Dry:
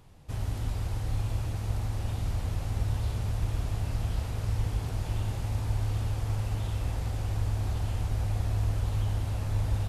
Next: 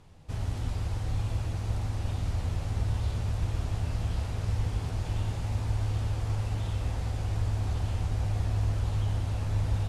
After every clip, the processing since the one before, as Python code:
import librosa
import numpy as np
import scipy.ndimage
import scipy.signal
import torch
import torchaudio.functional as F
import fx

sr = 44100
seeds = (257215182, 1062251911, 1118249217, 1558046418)

y = scipy.signal.sosfilt(scipy.signal.butter(2, 9100.0, 'lowpass', fs=sr, output='sos'), x)
y = fx.doubler(y, sr, ms=12.0, db=-11)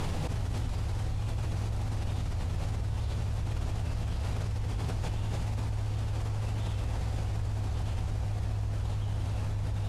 y = fx.env_flatten(x, sr, amount_pct=100)
y = F.gain(torch.from_numpy(y), -7.5).numpy()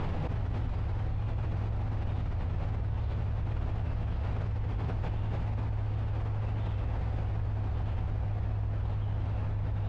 y = scipy.signal.sosfilt(scipy.signal.butter(2, 2300.0, 'lowpass', fs=sr, output='sos'), x)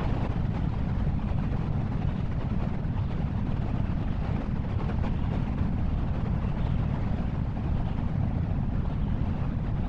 y = fx.whisperise(x, sr, seeds[0])
y = F.gain(torch.from_numpy(y), 4.0).numpy()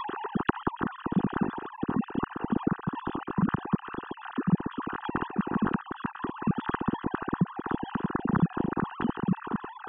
y = fx.sine_speech(x, sr)
y = fx.fixed_phaser(y, sr, hz=2200.0, stages=6)